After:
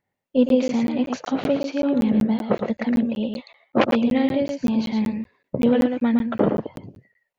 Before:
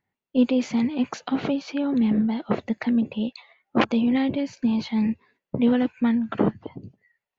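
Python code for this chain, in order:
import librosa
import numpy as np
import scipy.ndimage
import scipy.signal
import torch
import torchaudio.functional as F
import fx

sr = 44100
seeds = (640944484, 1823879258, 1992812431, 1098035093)

y = fx.peak_eq(x, sr, hz=560.0, db=8.0, octaves=0.56)
y = y + 10.0 ** (-5.5 / 20.0) * np.pad(y, (int(113 * sr / 1000.0), 0))[:len(y)]
y = fx.buffer_crackle(y, sr, first_s=0.49, period_s=0.19, block=512, kind='zero')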